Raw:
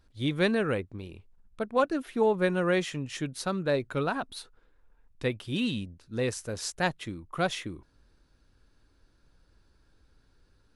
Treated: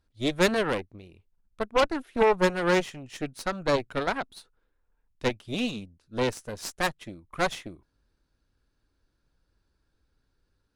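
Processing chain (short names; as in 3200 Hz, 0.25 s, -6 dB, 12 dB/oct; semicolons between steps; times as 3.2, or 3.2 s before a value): added harmonics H 5 -25 dB, 6 -11 dB, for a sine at -13 dBFS; upward expander 1.5:1, over -43 dBFS; gain +1.5 dB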